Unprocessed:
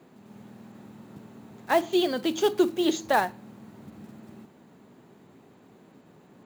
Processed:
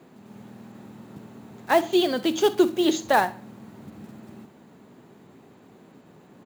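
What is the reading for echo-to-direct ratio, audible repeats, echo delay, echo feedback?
-18.5 dB, 2, 66 ms, 37%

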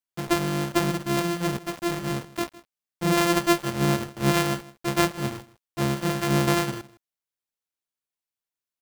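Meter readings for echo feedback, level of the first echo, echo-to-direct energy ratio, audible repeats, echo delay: no steady repeat, -20.0 dB, -20.0 dB, 1, 0.159 s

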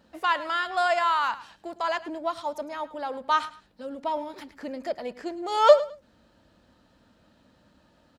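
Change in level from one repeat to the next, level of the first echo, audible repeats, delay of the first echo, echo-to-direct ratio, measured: -13.0 dB, -16.5 dB, 2, 0.106 s, -16.5 dB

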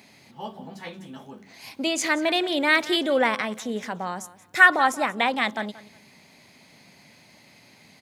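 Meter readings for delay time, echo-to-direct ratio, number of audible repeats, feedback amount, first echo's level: 0.181 s, -17.5 dB, 2, 24%, -18.0 dB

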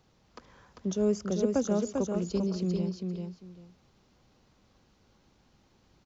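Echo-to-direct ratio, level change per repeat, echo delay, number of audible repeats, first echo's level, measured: -4.5 dB, -14.0 dB, 0.396 s, 2, -4.5 dB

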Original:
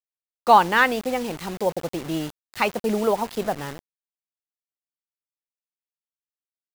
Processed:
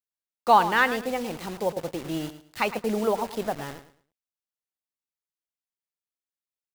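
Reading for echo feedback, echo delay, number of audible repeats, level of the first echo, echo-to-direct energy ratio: 25%, 0.109 s, 2, -13.0 dB, -12.5 dB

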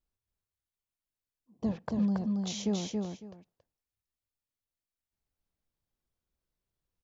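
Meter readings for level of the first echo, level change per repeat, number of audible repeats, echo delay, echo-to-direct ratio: -3.0 dB, -14.0 dB, 2, 0.277 s, -3.0 dB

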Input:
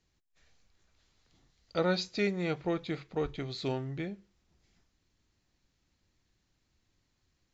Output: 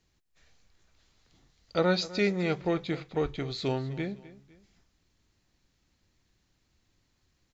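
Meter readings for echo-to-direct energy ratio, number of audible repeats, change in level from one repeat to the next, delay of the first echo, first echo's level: -17.5 dB, 2, -8.0 dB, 0.253 s, -18.0 dB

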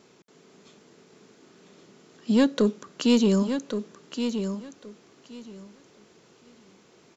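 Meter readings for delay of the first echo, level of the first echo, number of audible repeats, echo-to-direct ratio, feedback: 1.122 s, -8.0 dB, 2, -8.0 dB, 18%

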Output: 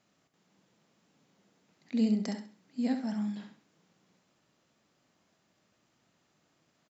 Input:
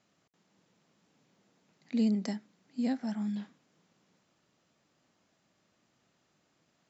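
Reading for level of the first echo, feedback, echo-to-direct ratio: -7.5 dB, 29%, -7.0 dB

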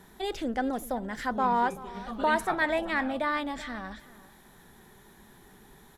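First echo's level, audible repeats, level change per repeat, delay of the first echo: -18.0 dB, 2, -16.0 dB, 0.382 s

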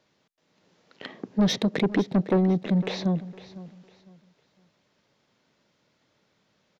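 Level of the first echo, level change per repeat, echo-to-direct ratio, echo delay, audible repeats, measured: -17.0 dB, -11.5 dB, -16.5 dB, 0.505 s, 2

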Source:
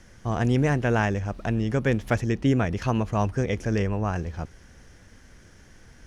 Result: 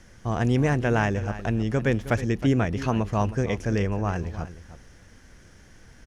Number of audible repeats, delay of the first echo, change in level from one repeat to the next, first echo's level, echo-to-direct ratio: 1, 0.316 s, no steady repeat, -14.0 dB, -14.0 dB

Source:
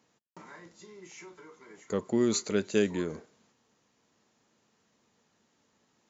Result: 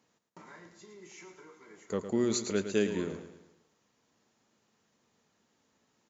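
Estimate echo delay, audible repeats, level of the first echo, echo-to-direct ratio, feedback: 0.11 s, 4, -10.0 dB, -9.0 dB, 46%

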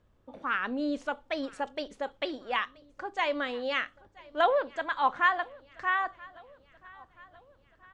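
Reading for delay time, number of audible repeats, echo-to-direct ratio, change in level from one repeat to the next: 0.979 s, 3, -22.0 dB, -5.5 dB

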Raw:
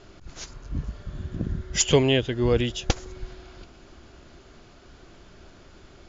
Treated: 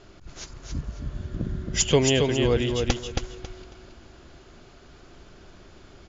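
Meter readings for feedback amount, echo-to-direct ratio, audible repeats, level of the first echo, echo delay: 24%, -4.0 dB, 3, -4.5 dB, 0.273 s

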